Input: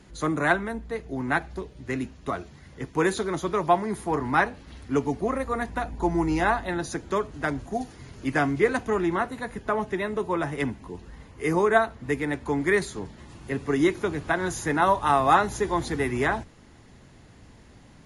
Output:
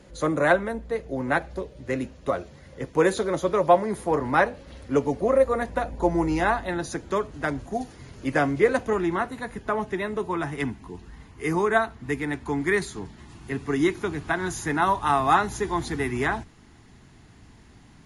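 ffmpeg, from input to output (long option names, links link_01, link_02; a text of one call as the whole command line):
ffmpeg -i in.wav -af "asetnsamples=nb_out_samples=441:pad=0,asendcmd='6.27 equalizer g 3;8.25 equalizer g 9.5;8.93 equalizer g -2;10.31 equalizer g -11',equalizer=frequency=540:width_type=o:width=0.3:gain=14" out.wav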